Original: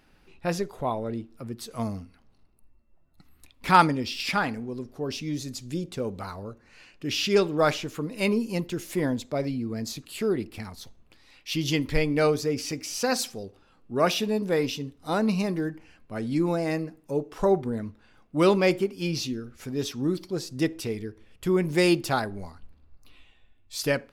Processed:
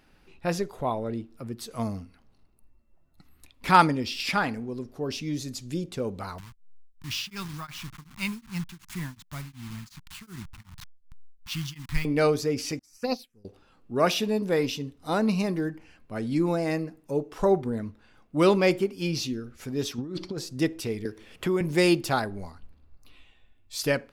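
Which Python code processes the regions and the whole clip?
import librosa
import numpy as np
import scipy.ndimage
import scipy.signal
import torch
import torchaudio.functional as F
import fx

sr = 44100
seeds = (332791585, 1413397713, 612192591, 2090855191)

y = fx.chain(x, sr, fx.delta_hold(step_db=-34.0),
    fx.curve_eq(hz=(170.0, 510.0, 990.0), db=(0, -29, -2)),
    fx.tremolo_abs(hz=2.7), at=(6.38, 12.05))
y = fx.chain(y, sr, fx.low_shelf(hz=72.0, db=11.0),
    fx.env_phaser(low_hz=360.0, high_hz=1600.0, full_db=-21.0),
    fx.upward_expand(threshold_db=-44.0, expansion=2.5), at=(12.79, 13.45))
y = fx.chain(y, sr, fx.lowpass(hz=5200.0, slope=12),
    fx.over_compress(threshold_db=-33.0, ratio=-1.0), at=(19.98, 20.38))
y = fx.chain(y, sr, fx.low_shelf(hz=150.0, db=-9.0),
    fx.band_squash(depth_pct=70), at=(21.05, 21.61))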